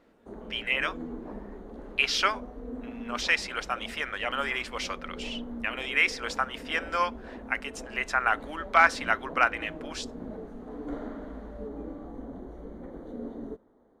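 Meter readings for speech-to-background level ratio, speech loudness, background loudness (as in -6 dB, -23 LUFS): 13.5 dB, -28.5 LUFS, -42.0 LUFS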